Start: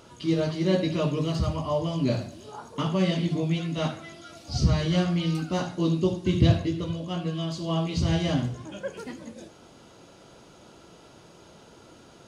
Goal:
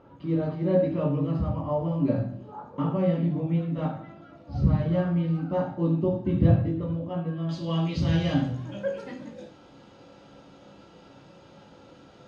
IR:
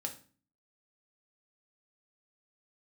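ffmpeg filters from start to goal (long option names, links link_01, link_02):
-filter_complex "[0:a]asetnsamples=nb_out_samples=441:pad=0,asendcmd='7.49 lowpass f 4100',lowpass=1300[link_01];[1:a]atrim=start_sample=2205[link_02];[link_01][link_02]afir=irnorm=-1:irlink=0"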